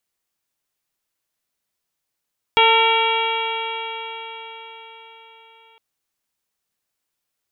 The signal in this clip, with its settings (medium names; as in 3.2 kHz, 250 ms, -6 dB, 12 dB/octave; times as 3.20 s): stretched partials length 3.21 s, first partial 449 Hz, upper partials 4.5/-3.5/-11/1.5/-1/0/-14 dB, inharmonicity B 0.002, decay 4.84 s, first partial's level -18.5 dB